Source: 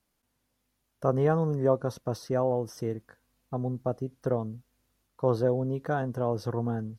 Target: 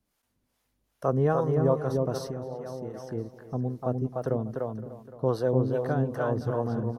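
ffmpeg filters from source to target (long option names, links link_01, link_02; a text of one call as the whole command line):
ffmpeg -i in.wav -filter_complex "[0:a]asplit=2[link_01][link_02];[link_02]adelay=297,lowpass=frequency=2800:poles=1,volume=-3dB,asplit=2[link_03][link_04];[link_04]adelay=297,lowpass=frequency=2800:poles=1,volume=0.21,asplit=2[link_05][link_06];[link_06]adelay=297,lowpass=frequency=2800:poles=1,volume=0.21[link_07];[link_03][link_05][link_07]amix=inputs=3:normalize=0[link_08];[link_01][link_08]amix=inputs=2:normalize=0,asettb=1/sr,asplit=3[link_09][link_10][link_11];[link_09]atrim=end=2.234[link_12];[link_10]atrim=start=2.23:end=2.94,asetpts=PTS-STARTPTS,afade=type=in:duration=0.004:curve=qsin,afade=type=out:start_time=0.706:duration=0.004:curve=qsin,acompressor=threshold=-33dB:ratio=6[link_13];[link_11]atrim=start=2.936[link_14];[link_12][link_13]acrossfade=duration=0.004:curve1=hsin:curve2=qsin[link_15];[link_15][link_14]acrossfade=duration=0.004:curve1=qsin:curve2=hsin,acrossover=split=470[link_16][link_17];[link_16]aeval=exprs='val(0)*(1-0.7/2+0.7/2*cos(2*PI*2.5*n/s))':channel_layout=same[link_18];[link_17]aeval=exprs='val(0)*(1-0.7/2-0.7/2*cos(2*PI*2.5*n/s))':channel_layout=same[link_19];[link_18][link_19]amix=inputs=2:normalize=0,asplit=2[link_20][link_21];[link_21]aecho=0:1:516|1032|1548:0.158|0.0491|0.0152[link_22];[link_20][link_22]amix=inputs=2:normalize=0,volume=3dB" out.wav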